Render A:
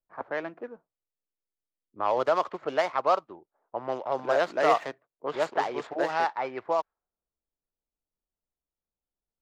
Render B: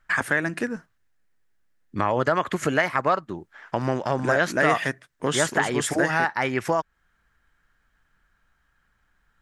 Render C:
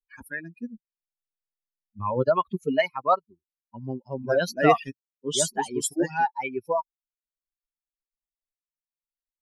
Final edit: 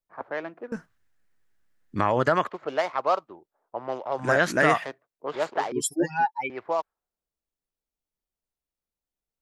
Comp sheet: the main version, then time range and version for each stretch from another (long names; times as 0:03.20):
A
0:00.72–0:02.47: punch in from B
0:04.24–0:04.79: punch in from B, crossfade 0.16 s
0:05.72–0:06.50: punch in from C